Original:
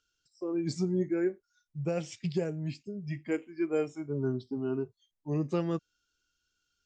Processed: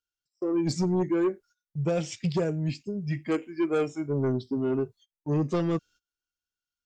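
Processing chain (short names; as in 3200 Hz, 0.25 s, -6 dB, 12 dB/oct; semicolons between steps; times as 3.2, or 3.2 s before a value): gate -57 dBFS, range -22 dB; sine folder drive 5 dB, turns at -18.5 dBFS; gain -2 dB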